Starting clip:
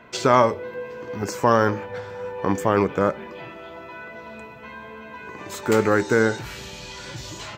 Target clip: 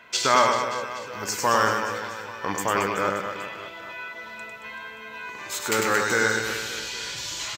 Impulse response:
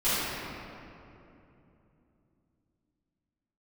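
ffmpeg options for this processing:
-af "tiltshelf=f=970:g=-9,aecho=1:1:100|225|381.2|576.6|820.7:0.631|0.398|0.251|0.158|0.1,volume=-3dB"

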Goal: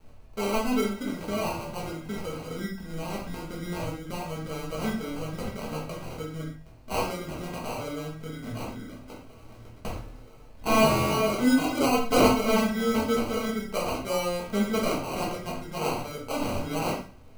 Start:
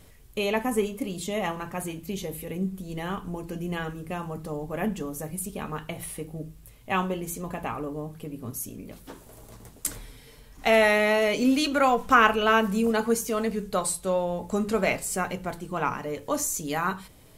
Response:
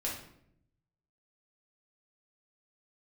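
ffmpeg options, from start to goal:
-filter_complex "[0:a]adynamicequalizer=threshold=0.0158:dfrequency=680:dqfactor=1.1:tfrequency=680:tqfactor=1.1:attack=5:release=100:ratio=0.375:range=2:mode=cutabove:tftype=bell,acrusher=samples=25:mix=1:aa=0.000001[a];[1:a]atrim=start_sample=2205,afade=t=out:st=0.19:d=0.01,atrim=end_sample=8820[b];[a][b]afir=irnorm=-1:irlink=0,volume=-4dB"

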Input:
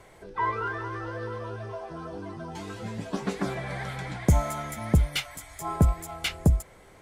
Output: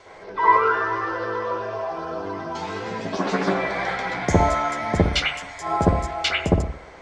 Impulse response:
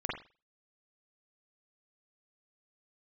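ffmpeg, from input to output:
-filter_complex "[0:a]lowpass=f=5.5k:w=0.5412,lowpass=f=5.5k:w=1.3066,bass=f=250:g=-12,treble=f=4k:g=9,bandreject=f=71.31:t=h:w=4,bandreject=f=142.62:t=h:w=4,bandreject=f=213.93:t=h:w=4,bandreject=f=285.24:t=h:w=4[a];[1:a]atrim=start_sample=2205,asetrate=31752,aresample=44100[b];[a][b]afir=irnorm=-1:irlink=0,volume=4.5dB"

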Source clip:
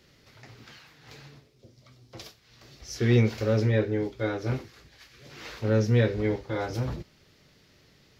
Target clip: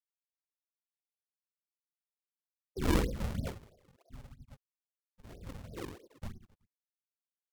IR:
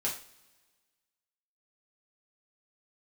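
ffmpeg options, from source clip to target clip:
-filter_complex "[0:a]afftfilt=real='re*gte(hypot(re,im),0.398)':imag='im*gte(hypot(re,im),0.398)':win_size=1024:overlap=0.75,superequalizer=10b=0.708:12b=0.501:13b=0.708,acrossover=split=480|630[a][b][c];[c]alimiter=level_in=17.5dB:limit=-24dB:level=0:latency=1:release=42,volume=-17.5dB[d];[a][b][d]amix=inputs=3:normalize=0,afftfilt=real='hypot(re,im)*cos(2*PI*random(0))':imag='hypot(re,im)*sin(2*PI*random(1))':win_size=512:overlap=0.75,aecho=1:1:50|112.5|190.6|288.3|410.4:0.631|0.398|0.251|0.158|0.1,aphaser=in_gain=1:out_gain=1:delay=3.3:decay=0.53:speed=0.77:type=triangular,acrusher=samples=41:mix=1:aa=0.000001:lfo=1:lforange=65.6:lforate=2.8,asetrate=48000,aresample=44100,aeval=exprs='val(0)*pow(10,-20*(0.5-0.5*cos(2*PI*0.64*n/s))/20)':c=same,volume=-1.5dB"

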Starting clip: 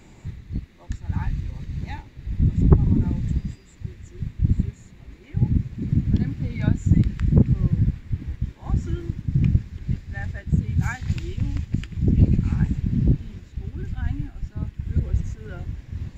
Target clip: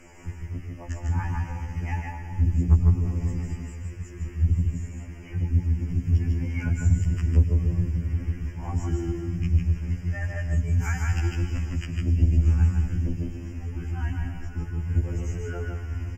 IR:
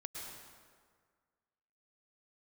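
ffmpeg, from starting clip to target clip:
-filter_complex "[0:a]asuperstop=centerf=3900:order=12:qfactor=2.2,equalizer=f=140:t=o:w=1.3:g=-11,aecho=1:1:153:0.668,asplit=2[a][b];[1:a]atrim=start_sample=2205[c];[b][c]afir=irnorm=-1:irlink=0,volume=-2.5dB[d];[a][d]amix=inputs=2:normalize=0,acrossover=split=120|3000[e][f][g];[f]acompressor=threshold=-32dB:ratio=6[h];[e][h][g]amix=inputs=3:normalize=0,afftfilt=real='re*2*eq(mod(b,4),0)':imag='im*2*eq(mod(b,4),0)':win_size=2048:overlap=0.75,volume=2.5dB"

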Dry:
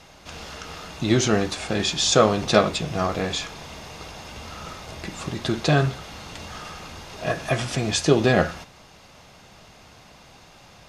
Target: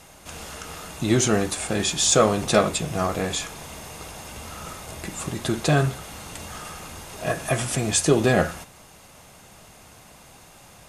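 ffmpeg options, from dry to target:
-af "highshelf=f=6.8k:t=q:w=1.5:g=10.5,asoftclip=type=tanh:threshold=-4.5dB"

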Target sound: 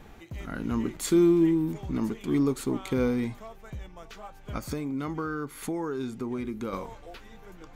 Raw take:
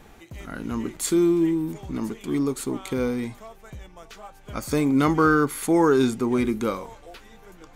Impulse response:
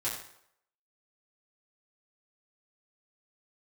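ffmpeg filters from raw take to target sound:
-filter_complex "[0:a]bass=f=250:g=3,treble=f=4k:g=-2,asettb=1/sr,asplit=3[a][b][c];[a]atrim=end=4.574[d];[b]atrim=start=4.57:end=6.73,asetpts=PTS-STARTPTS,afade=t=in:d=0.004:c=qsin,afade=t=out:st=2.156:d=0.004:c=qsin,acompressor=threshold=-30dB:ratio=4[e];[c]atrim=start=6.726[f];[d][e]acrossfade=d=0.004:c1=hsin:c2=qsin[g];[g][f]acrossfade=d=0.004:c1=qsin:c2=hsin,equalizer=f=9.2k:t=o:w=0.71:g=-4,volume=-1.5dB"

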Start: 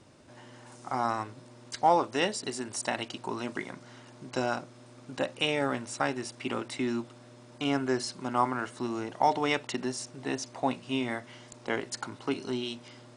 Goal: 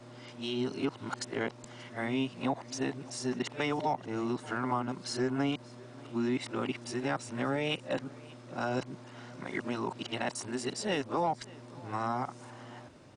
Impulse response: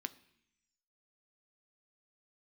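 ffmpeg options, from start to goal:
-filter_complex "[0:a]areverse,highshelf=f=5.5k:g=-7.5,acrossover=split=230[a][b];[b]acompressor=threshold=-33dB:ratio=2.5[c];[a][c]amix=inputs=2:normalize=0,asplit=2[d][e];[e]asoftclip=type=tanh:threshold=-30.5dB,volume=-11dB[f];[d][f]amix=inputs=2:normalize=0,aecho=1:1:582:0.075"

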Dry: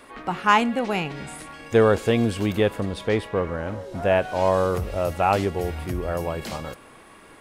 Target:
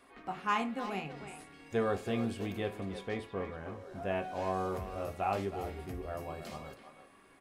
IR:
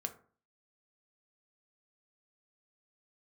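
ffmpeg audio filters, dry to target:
-filter_complex "[0:a]asplit=2[a][b];[b]adelay=320,highpass=300,lowpass=3.4k,asoftclip=type=hard:threshold=-14dB,volume=-9dB[c];[a][c]amix=inputs=2:normalize=0[d];[1:a]atrim=start_sample=2205,asetrate=70560,aresample=44100[e];[d][e]afir=irnorm=-1:irlink=0,volume=-8.5dB"

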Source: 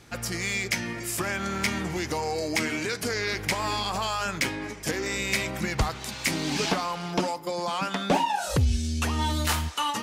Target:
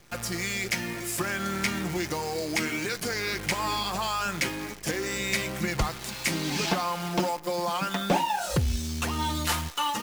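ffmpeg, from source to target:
-af "aecho=1:1:5.7:0.37,acrusher=bits=7:dc=4:mix=0:aa=0.000001,volume=-1.5dB"

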